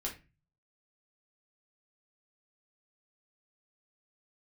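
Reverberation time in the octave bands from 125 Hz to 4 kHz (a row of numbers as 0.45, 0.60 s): 0.70, 0.45, 0.30, 0.25, 0.30, 0.25 s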